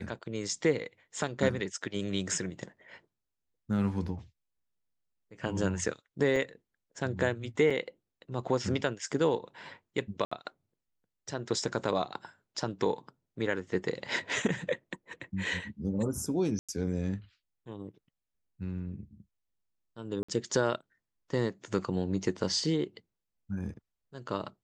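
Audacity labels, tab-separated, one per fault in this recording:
6.360000	6.360000	drop-out 3.3 ms
7.700000	7.710000	drop-out 5.1 ms
10.250000	10.310000	drop-out 65 ms
16.590000	16.690000	drop-out 96 ms
20.230000	20.290000	drop-out 55 ms

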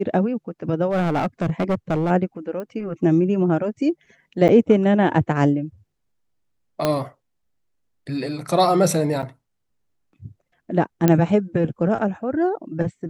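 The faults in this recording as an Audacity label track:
0.890000	2.110000	clipping −17 dBFS
2.600000	2.600000	click −20 dBFS
4.480000	4.490000	drop-out 9.1 ms
6.850000	6.850000	click −6 dBFS
9.220000	9.230000	drop-out 7.8 ms
11.080000	11.080000	click −4 dBFS

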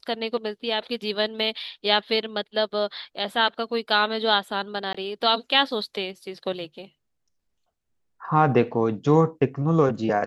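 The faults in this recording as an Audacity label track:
4.930000	4.950000	drop-out 15 ms

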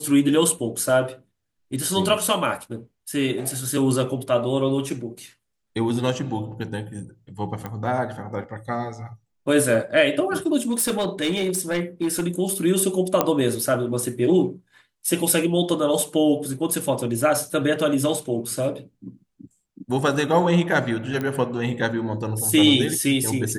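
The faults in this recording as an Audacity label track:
7.660000	7.660000	click −17 dBFS
10.620000	12.210000	clipping −18 dBFS
13.210000	13.210000	click −4 dBFS
21.210000	21.210000	click −15 dBFS

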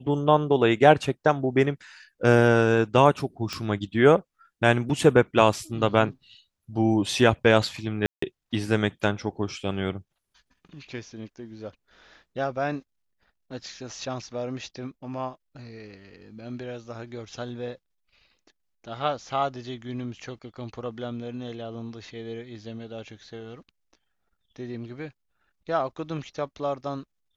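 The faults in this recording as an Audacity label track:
3.530000	3.530000	click −16 dBFS
8.060000	8.220000	drop-out 164 ms

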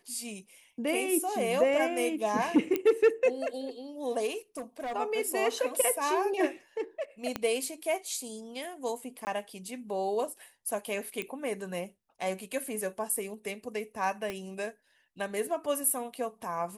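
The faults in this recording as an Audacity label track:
2.760000	2.760000	click −15 dBFS
4.570000	4.960000	clipping −32 dBFS
7.360000	7.360000	click −16 dBFS
9.250000	9.270000	drop-out 19 ms
11.220000	11.220000	click −20 dBFS
14.300000	14.300000	click −21 dBFS

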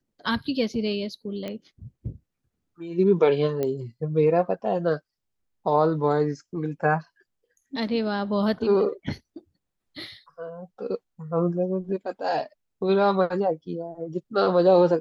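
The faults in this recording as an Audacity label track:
1.480000	1.480000	click −20 dBFS
3.630000	3.630000	click −15 dBFS

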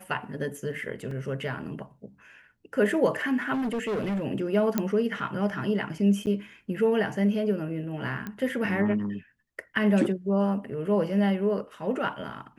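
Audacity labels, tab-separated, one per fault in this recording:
1.110000	1.110000	drop-out 3.1 ms
3.530000	4.250000	clipping −25.5 dBFS
4.780000	4.780000	click −11 dBFS
6.260000	6.270000	drop-out 9.4 ms
8.270000	8.270000	click −21 dBFS

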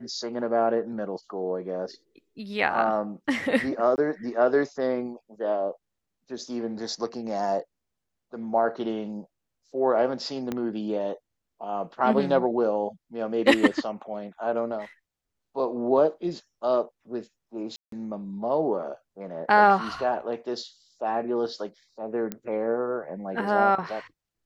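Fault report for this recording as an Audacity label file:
3.960000	3.980000	drop-out 19 ms
10.520000	10.520000	click −16 dBFS
17.760000	17.920000	drop-out 163 ms
22.320000	22.320000	click −16 dBFS

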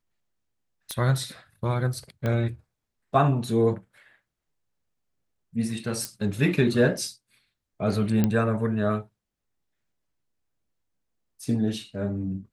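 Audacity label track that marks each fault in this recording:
0.910000	0.910000	click −15 dBFS
2.260000	2.260000	click −16 dBFS
6.050000	6.050000	click −14 dBFS
8.240000	8.240000	click −10 dBFS

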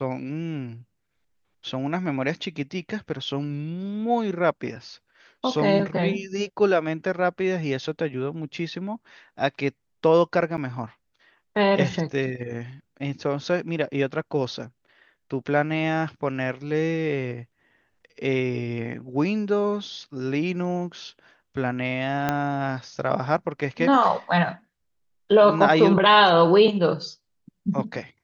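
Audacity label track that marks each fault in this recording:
10.570000	10.580000	drop-out 8.7 ms
22.290000	22.290000	click −9 dBFS

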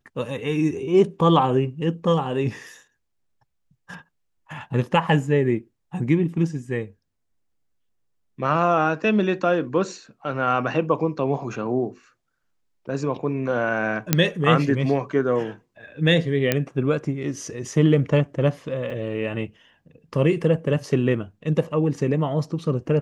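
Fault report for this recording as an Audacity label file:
14.130000	14.130000	click −1 dBFS
16.520000	16.520000	click −5 dBFS
18.900000	18.900000	drop-out 4.5 ms

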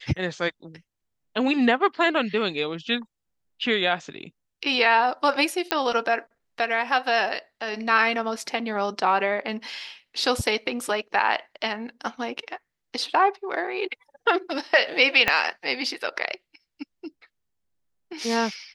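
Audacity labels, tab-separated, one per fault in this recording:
5.710000	5.710000	click −6 dBFS
15.280000	15.280000	click −6 dBFS

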